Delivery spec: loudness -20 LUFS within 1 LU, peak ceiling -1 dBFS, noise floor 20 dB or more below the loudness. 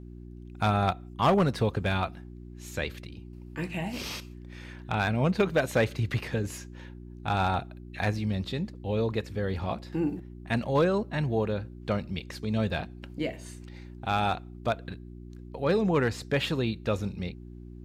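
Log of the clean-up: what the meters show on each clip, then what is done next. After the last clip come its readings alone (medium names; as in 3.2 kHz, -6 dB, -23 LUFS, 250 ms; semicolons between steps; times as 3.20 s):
clipped samples 0.3%; clipping level -16.5 dBFS; hum 60 Hz; highest harmonic 360 Hz; hum level -41 dBFS; loudness -29.5 LUFS; peak level -16.5 dBFS; loudness target -20.0 LUFS
-> clip repair -16.5 dBFS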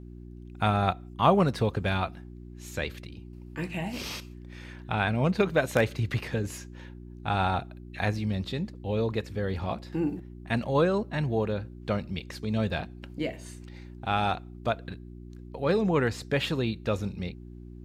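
clipped samples 0.0%; hum 60 Hz; highest harmonic 360 Hz; hum level -41 dBFS
-> de-hum 60 Hz, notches 6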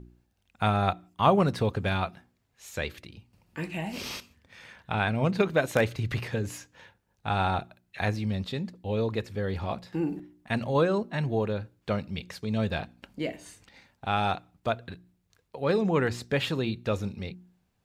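hum not found; loudness -29.5 LUFS; peak level -8.5 dBFS; loudness target -20.0 LUFS
-> trim +9.5 dB; peak limiter -1 dBFS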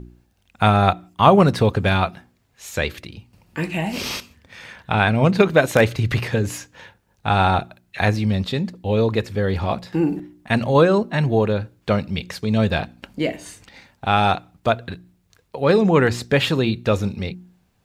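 loudness -20.0 LUFS; peak level -1.0 dBFS; noise floor -64 dBFS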